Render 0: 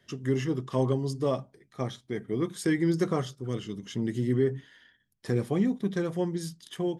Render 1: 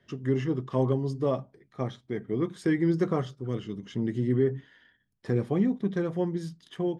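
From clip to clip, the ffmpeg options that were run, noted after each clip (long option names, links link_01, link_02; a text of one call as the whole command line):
ffmpeg -i in.wav -af "aemphasis=mode=reproduction:type=75fm" out.wav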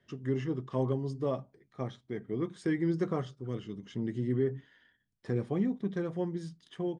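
ffmpeg -i in.wav -af "aresample=22050,aresample=44100,volume=-5dB" out.wav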